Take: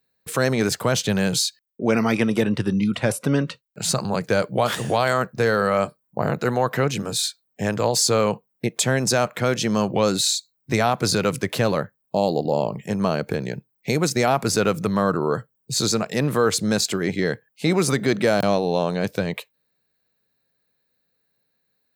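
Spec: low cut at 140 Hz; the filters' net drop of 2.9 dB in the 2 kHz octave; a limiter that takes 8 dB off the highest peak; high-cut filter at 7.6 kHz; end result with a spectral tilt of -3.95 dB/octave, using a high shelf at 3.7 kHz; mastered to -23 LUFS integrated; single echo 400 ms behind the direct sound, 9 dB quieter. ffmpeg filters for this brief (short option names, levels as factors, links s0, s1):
-af "highpass=140,lowpass=7600,equalizer=f=2000:t=o:g=-5.5,highshelf=f=3700:g=6,alimiter=limit=0.2:level=0:latency=1,aecho=1:1:400:0.355,volume=1.26"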